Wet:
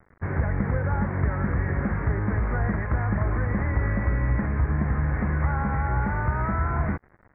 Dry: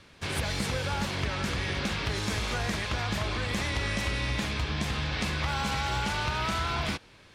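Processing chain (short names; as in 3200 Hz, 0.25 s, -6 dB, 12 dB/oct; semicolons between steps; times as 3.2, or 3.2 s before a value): bit-crush 8-bit; steep low-pass 2000 Hz 72 dB/oct; low shelf 230 Hz +8.5 dB; gain +1.5 dB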